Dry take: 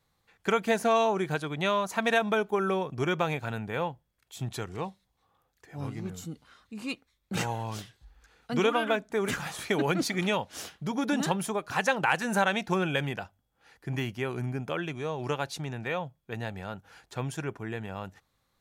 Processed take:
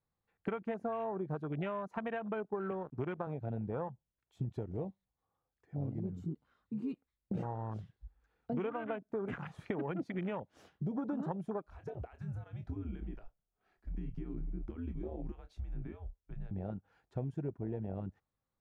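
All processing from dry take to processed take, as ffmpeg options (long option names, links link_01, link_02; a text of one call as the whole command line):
ffmpeg -i in.wav -filter_complex "[0:a]asettb=1/sr,asplit=3[link_01][link_02][link_03];[link_01]atrim=end=2.714[link_04];[link_02]atrim=start=2.71:end=3.27,asetpts=PTS-STARTPTS,afade=type=in:duration=0.004:curve=qsin,afade=type=out:start_time=0.556:duration=0.004:curve=qsin,highpass=frequency=69:width=0.5412,highpass=frequency=69:width=1.3066,aeval=exprs='sgn(val(0))*max(abs(val(0))-0.00891,0)':channel_layout=same[link_05];[link_03]atrim=start=3.266[link_06];[link_04][link_05]acrossfade=duration=0.004:curve1=hsin:curve2=qsin[link_07];[link_07][link_06]acrossfade=duration=0.004:curve1=qsin:curve2=hsin,asettb=1/sr,asplit=3[link_08][link_09][link_10];[link_08]atrim=end=11.684[link_11];[link_09]atrim=start=11.68:end=16.51,asetpts=PTS-STARTPTS,afade=type=in:duration=0.004:curve=qsin,afade=type=out:start_time=4.826:duration=0.004:curve=qsin,acompressor=threshold=-37dB:ratio=16:attack=3.2:release=140:knee=1:detection=peak,afreqshift=-88,asplit=2[link_12][link_13];[link_13]adelay=27,volume=-9.5dB[link_14];[link_12][link_14]amix=inputs=2:normalize=0,atrim=end_sample=213003[link_15];[link_10]atrim=start=16.506[link_16];[link_11][link_15]acrossfade=duration=0.004:curve1=hsin:curve2=qsin[link_17];[link_17][link_16]acrossfade=duration=0.004:curve1=qsin:curve2=hsin,afwtdn=0.0251,acompressor=threshold=-38dB:ratio=6,lowpass=frequency=1000:poles=1,volume=4dB" out.wav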